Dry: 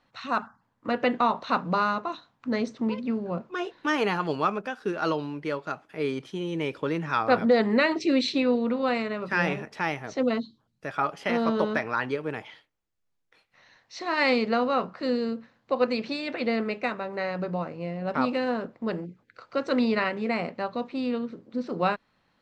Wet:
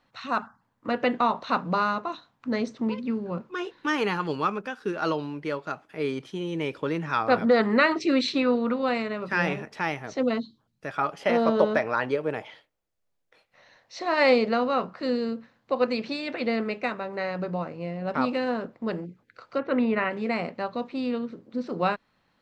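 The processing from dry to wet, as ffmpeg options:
ffmpeg -i in.wav -filter_complex "[0:a]asettb=1/sr,asplit=3[link_01][link_02][link_03];[link_01]atrim=end=2.924[link_04];[link_02]atrim=start=2.92:end=4.95,asetpts=PTS-STARTPTS,afade=type=in:duration=0.004:curve=qsin,afade=type=out:start_time=2.026:duration=0.004:curve=qsin,equalizer=frequency=670:width_type=o:width=0.28:gain=-9.5[link_05];[link_03]atrim=start=4.946[link_06];[link_04][link_05]acrossfade=duration=0.004:curve1=hsin:curve2=qsin[link_07];[link_07][link_06]acrossfade=duration=0.004:curve1=qsin:curve2=hsin,asettb=1/sr,asplit=3[link_08][link_09][link_10];[link_08]atrim=end=7.474[link_11];[link_09]atrim=start=7.47:end=8.74,asetpts=PTS-STARTPTS,afade=type=in:duration=0.004:curve=qsin,afade=type=out:start_time=1.266:duration=0.004:curve=qsin,equalizer=frequency=1300:width=2.3:gain=9[link_12];[link_10]atrim=start=8.736[link_13];[link_11][link_12]acrossfade=duration=0.004:curve1=hsin:curve2=qsin[link_14];[link_14][link_13]acrossfade=duration=0.004:curve1=qsin:curve2=hsin,asettb=1/sr,asplit=3[link_15][link_16][link_17];[link_15]atrim=end=11.204[link_18];[link_16]atrim=start=11.2:end=14.49,asetpts=PTS-STARTPTS,afade=type=in:duration=0.004:curve=qsin,afade=type=out:start_time=3.286:duration=0.004:curve=qsin,equalizer=frequency=580:width_type=o:width=0.77:gain=7.5[link_19];[link_17]atrim=start=14.486[link_20];[link_18][link_19]acrossfade=duration=0.004:curve1=hsin:curve2=qsin[link_21];[link_21][link_20]acrossfade=duration=0.004:curve1=qsin:curve2=hsin,asplit=3[link_22][link_23][link_24];[link_22]afade=type=out:start_time=19.57:duration=0.02[link_25];[link_23]lowpass=frequency=2800:width=0.5412,lowpass=frequency=2800:width=1.3066,afade=type=in:start_time=19.57:duration=0.02,afade=type=out:start_time=20.1:duration=0.02[link_26];[link_24]afade=type=in:start_time=20.1:duration=0.02[link_27];[link_25][link_26][link_27]amix=inputs=3:normalize=0" out.wav

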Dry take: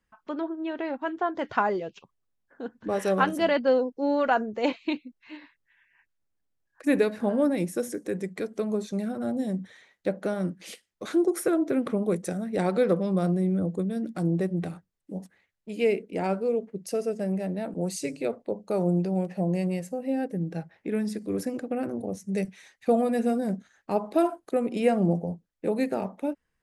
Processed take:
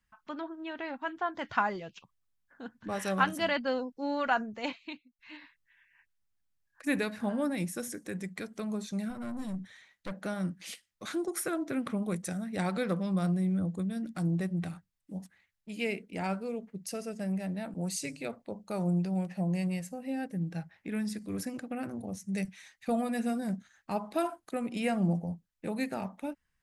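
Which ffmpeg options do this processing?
ffmpeg -i in.wav -filter_complex "[0:a]asettb=1/sr,asplit=3[link_01][link_02][link_03];[link_01]atrim=end=9.104[link_04];[link_02]atrim=start=9.1:end=10.12,asetpts=PTS-STARTPTS,afade=type=in:duration=0.004:curve=qsin,afade=type=out:start_time=1.016:duration=0.004:curve=qsin,aeval=exprs='(tanh(22.4*val(0)+0.3)-tanh(0.3))/22.4':channel_layout=same[link_05];[link_03]atrim=start=10.116[link_06];[link_04][link_05]acrossfade=duration=0.004:curve1=hsin:curve2=qsin[link_07];[link_07][link_06]acrossfade=duration=0.004:curve1=qsin:curve2=hsin,asplit=2[link_08][link_09];[link_08]atrim=end=5.19,asetpts=PTS-STARTPTS,afade=type=out:start_time=4.43:duration=0.76:silence=0.0707946[link_10];[link_09]atrim=start=5.19,asetpts=PTS-STARTPTS,afade=type=in:duration=0.004:curve=hsin:silence=0.0707946[link_11];[link_10][link_11]concat=n=2:v=0:a=1,equalizer=frequency=430:width=0.96:gain=-12.5" out.wav

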